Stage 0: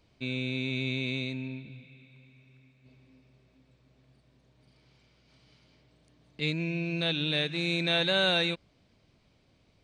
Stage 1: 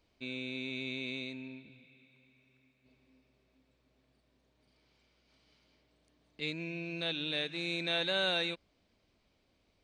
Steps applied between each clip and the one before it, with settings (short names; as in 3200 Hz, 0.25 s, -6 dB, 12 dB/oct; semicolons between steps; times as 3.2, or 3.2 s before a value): bell 130 Hz -10.5 dB 0.87 oct; gain -5.5 dB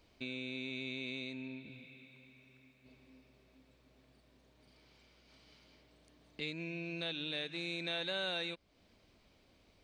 compressor 2:1, threshold -51 dBFS, peak gain reduction 12.5 dB; gain +6 dB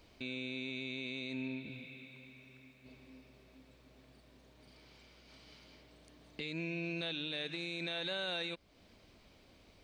limiter -34.5 dBFS, peak gain reduction 8 dB; gain +5 dB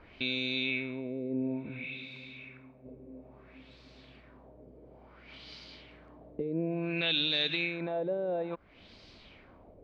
LFO low-pass sine 0.58 Hz 470–4700 Hz; gain +6 dB